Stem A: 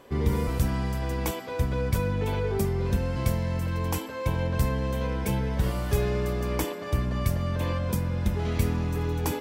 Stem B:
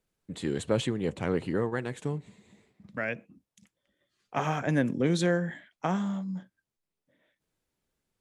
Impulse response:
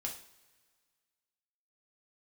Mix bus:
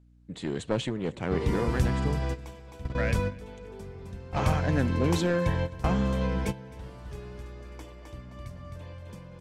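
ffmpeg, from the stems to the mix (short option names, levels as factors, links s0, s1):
-filter_complex "[0:a]bandreject=f=73.03:t=h:w=4,bandreject=f=146.06:t=h:w=4,bandreject=f=219.09:t=h:w=4,bandreject=f=292.12:t=h:w=4,bandreject=f=365.15:t=h:w=4,adelay=1200,volume=0.944,asplit=2[s0][s1];[s1]volume=0.0944[s2];[1:a]aeval=exprs='val(0)+0.00158*(sin(2*PI*60*n/s)+sin(2*PI*2*60*n/s)/2+sin(2*PI*3*60*n/s)/3+sin(2*PI*4*60*n/s)/4+sin(2*PI*5*60*n/s)/5)':c=same,aeval=exprs='clip(val(0),-1,0.0531)':c=same,volume=0.944,asplit=3[s3][s4][s5];[s4]volume=0.0631[s6];[s5]apad=whole_len=467777[s7];[s0][s7]sidechaingate=range=0.158:threshold=0.00355:ratio=16:detection=peak[s8];[s2][s6]amix=inputs=2:normalize=0,aecho=0:1:261|522|783|1044:1|0.3|0.09|0.027[s9];[s8][s3][s9]amix=inputs=3:normalize=0,lowpass=7700"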